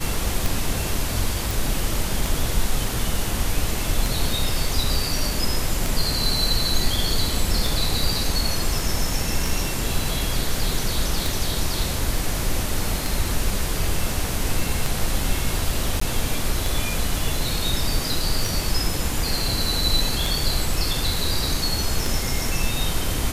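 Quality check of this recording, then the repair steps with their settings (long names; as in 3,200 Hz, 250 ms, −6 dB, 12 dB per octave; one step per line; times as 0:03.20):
scratch tick 33 1/3 rpm
0:01.51: click
0:16.00–0:16.01: drop-out 14 ms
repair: click removal
repair the gap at 0:16.00, 14 ms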